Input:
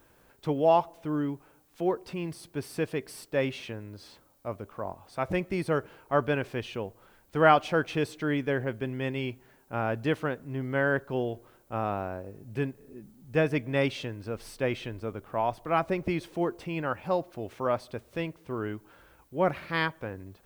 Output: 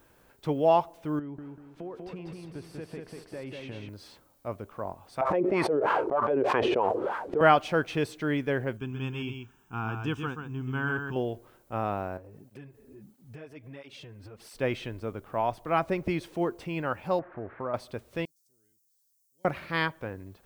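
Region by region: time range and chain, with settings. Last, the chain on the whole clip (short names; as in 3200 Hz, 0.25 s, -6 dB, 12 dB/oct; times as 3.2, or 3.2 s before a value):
1.19–3.89 LPF 1800 Hz 6 dB/oct + compressor 12:1, threshold -35 dBFS + feedback echo 0.193 s, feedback 40%, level -3.5 dB
5.21–7.41 sample leveller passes 1 + wah 3.2 Hz 340–1100 Hz, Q 4.7 + fast leveller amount 100%
8.77–11.16 fixed phaser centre 2900 Hz, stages 8 + echo 0.131 s -6 dB
12.17–14.55 compressor 5:1, threshold -41 dBFS + tape flanging out of phase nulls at 1.5 Hz, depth 6.8 ms
17.19–17.74 switching spikes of -24.5 dBFS + steep low-pass 1700 Hz + compressor 2.5:1, threshold -31 dBFS
18.25–19.45 inverse Chebyshev high-pass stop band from 2900 Hz + high shelf 8000 Hz -4 dB
whole clip: dry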